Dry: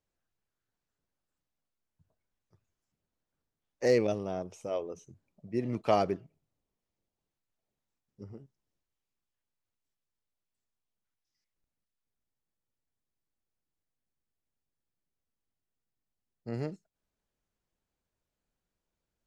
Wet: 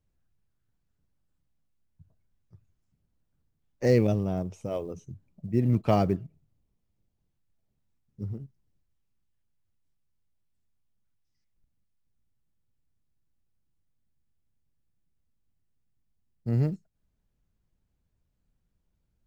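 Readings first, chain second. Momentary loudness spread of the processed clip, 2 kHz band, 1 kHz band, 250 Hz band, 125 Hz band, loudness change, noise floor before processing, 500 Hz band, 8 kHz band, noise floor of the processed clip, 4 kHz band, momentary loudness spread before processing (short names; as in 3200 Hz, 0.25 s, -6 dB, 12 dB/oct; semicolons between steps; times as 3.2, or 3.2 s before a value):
17 LU, 0.0 dB, +0.5 dB, +7.5 dB, +13.5 dB, +4.5 dB, under -85 dBFS, +1.5 dB, n/a, -77 dBFS, -1.0 dB, 21 LU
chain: short-mantissa float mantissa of 4-bit; tone controls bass +15 dB, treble -2 dB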